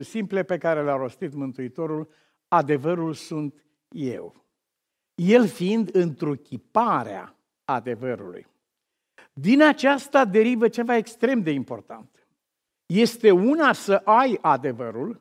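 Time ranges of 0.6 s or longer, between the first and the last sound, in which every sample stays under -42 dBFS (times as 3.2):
4.28–5.18
8.42–9.18
12.02–12.9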